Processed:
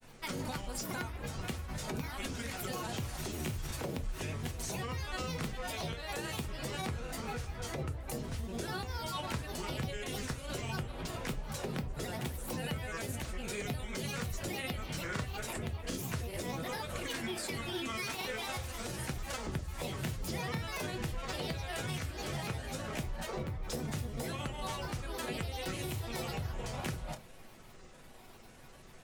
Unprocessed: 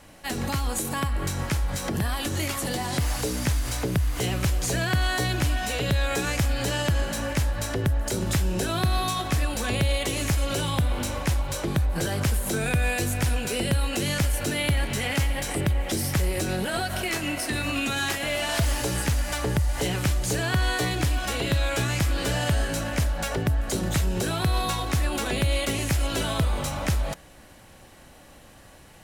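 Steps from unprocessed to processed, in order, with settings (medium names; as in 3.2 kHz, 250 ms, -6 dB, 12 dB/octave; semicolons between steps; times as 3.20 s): compression, threshold -29 dBFS, peak gain reduction 9.5 dB; granulator, spray 25 ms, pitch spread up and down by 7 st; reverberation, pre-delay 4 ms, DRR 6 dB; trim -5.5 dB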